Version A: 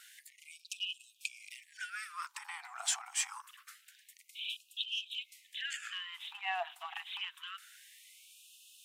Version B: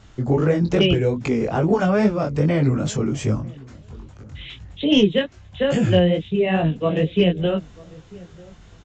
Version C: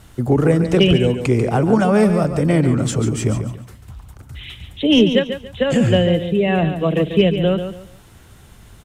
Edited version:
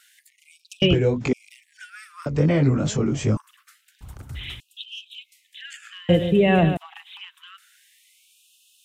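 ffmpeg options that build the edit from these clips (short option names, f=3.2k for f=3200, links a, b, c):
-filter_complex "[1:a]asplit=2[a][b];[2:a]asplit=2[c][d];[0:a]asplit=5[e][f][g][h][i];[e]atrim=end=0.822[j];[a]atrim=start=0.818:end=1.332[k];[f]atrim=start=1.328:end=2.262[l];[b]atrim=start=2.258:end=3.372[m];[g]atrim=start=3.368:end=4.012[n];[c]atrim=start=4.008:end=4.602[o];[h]atrim=start=4.598:end=6.092[p];[d]atrim=start=6.088:end=6.772[q];[i]atrim=start=6.768[r];[j][k]acrossfade=d=0.004:c1=hsin:c2=hsin[s];[s][l]acrossfade=d=0.004:c1=hsin:c2=hsin[t];[t][m]acrossfade=d=0.004:c1=hsin:c2=hsin[u];[u][n]acrossfade=d=0.004:c1=hsin:c2=hsin[v];[v][o]acrossfade=d=0.004:c1=hsin:c2=hsin[w];[w][p]acrossfade=d=0.004:c1=hsin:c2=hsin[x];[x][q]acrossfade=d=0.004:c1=hsin:c2=hsin[y];[y][r]acrossfade=d=0.004:c1=hsin:c2=hsin"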